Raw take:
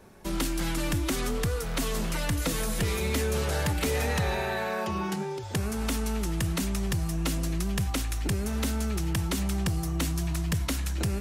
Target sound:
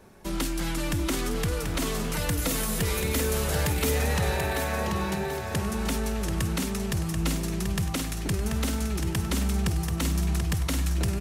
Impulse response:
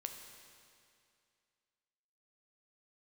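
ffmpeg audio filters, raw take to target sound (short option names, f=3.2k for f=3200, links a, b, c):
-filter_complex "[0:a]asettb=1/sr,asplit=3[a][b][c];[a]atrim=end=2.134[d];[b]atrim=start=2.13:end=3.91,asetpts=PTS-STARTPTS,afade=t=in:d=0.004:c=qsin,afade=t=out:st=1.776:d=0.004:c=qsin,highshelf=f=12k:g=11.5[e];[c]atrim=start=3.906[f];[d][e]acrossfade=d=0.004:c1=hsin:c2=qsin[g];[g][f]acrossfade=d=0.004:c1=qsin:c2=hsin,aecho=1:1:735|1470|2205|2940|3675:0.501|0.21|0.0884|0.0371|0.0156"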